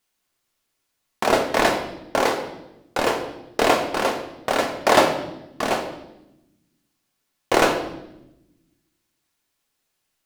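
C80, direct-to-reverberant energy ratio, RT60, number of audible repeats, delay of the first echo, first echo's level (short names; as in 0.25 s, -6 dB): 10.5 dB, 3.0 dB, 0.90 s, none, none, none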